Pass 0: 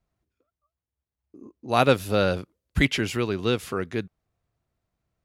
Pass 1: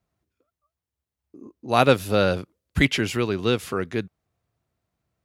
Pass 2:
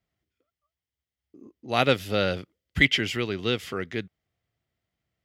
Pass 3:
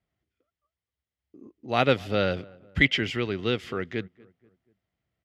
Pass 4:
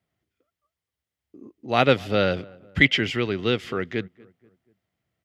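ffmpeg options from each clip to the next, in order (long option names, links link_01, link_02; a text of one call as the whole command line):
ffmpeg -i in.wav -af "highpass=62,volume=2dB" out.wav
ffmpeg -i in.wav -af "equalizer=frequency=1000:width_type=o:width=0.33:gain=-5,equalizer=frequency=2000:width_type=o:width=0.33:gain=9,equalizer=frequency=3150:width_type=o:width=0.33:gain=9,equalizer=frequency=5000:width_type=o:width=0.33:gain=4,equalizer=frequency=10000:width_type=o:width=0.33:gain=-6,volume=-5dB" out.wav
ffmpeg -i in.wav -filter_complex "[0:a]aemphasis=mode=reproduction:type=50fm,asplit=2[link_01][link_02];[link_02]adelay=241,lowpass=frequency=1500:poles=1,volume=-23.5dB,asplit=2[link_03][link_04];[link_04]adelay=241,lowpass=frequency=1500:poles=1,volume=0.48,asplit=2[link_05][link_06];[link_06]adelay=241,lowpass=frequency=1500:poles=1,volume=0.48[link_07];[link_01][link_03][link_05][link_07]amix=inputs=4:normalize=0" out.wav
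ffmpeg -i in.wav -af "highpass=78,volume=3.5dB" out.wav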